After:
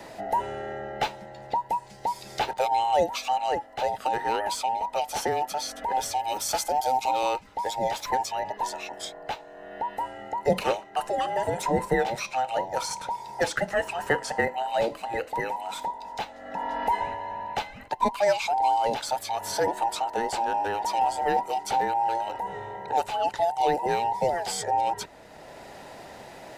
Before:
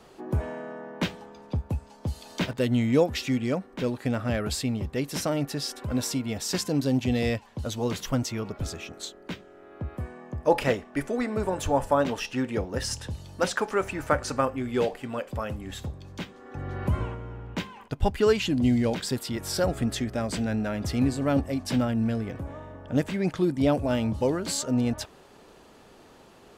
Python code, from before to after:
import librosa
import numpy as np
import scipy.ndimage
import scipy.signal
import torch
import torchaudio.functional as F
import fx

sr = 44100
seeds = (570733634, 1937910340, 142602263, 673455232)

y = fx.band_invert(x, sr, width_hz=1000)
y = fx.high_shelf(y, sr, hz=7600.0, db=11.5, at=(6.19, 7.11))
y = fx.band_squash(y, sr, depth_pct=40)